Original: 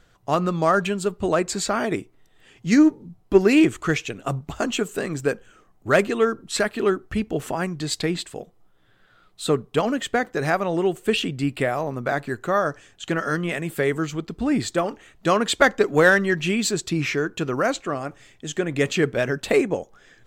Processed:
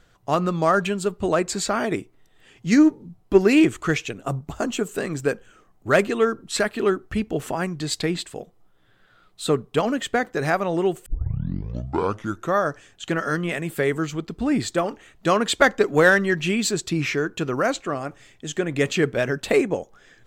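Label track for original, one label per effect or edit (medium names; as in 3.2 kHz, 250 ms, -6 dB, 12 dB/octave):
4.130000	4.870000	peaking EQ 2.8 kHz -5 dB 2 oct
11.060000	11.060000	tape start 1.49 s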